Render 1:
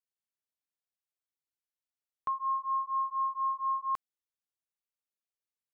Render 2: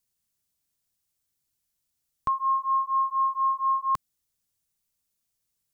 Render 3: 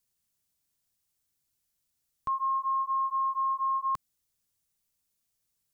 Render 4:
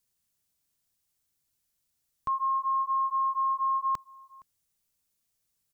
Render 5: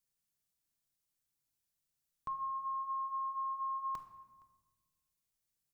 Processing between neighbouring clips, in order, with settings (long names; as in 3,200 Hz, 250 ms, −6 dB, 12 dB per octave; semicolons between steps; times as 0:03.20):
bass and treble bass +14 dB, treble +10 dB; level +6.5 dB
brickwall limiter −24.5 dBFS, peak gain reduction 7.5 dB
slap from a distant wall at 80 metres, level −23 dB; level +1 dB
rectangular room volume 790 cubic metres, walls mixed, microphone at 0.66 metres; level −8.5 dB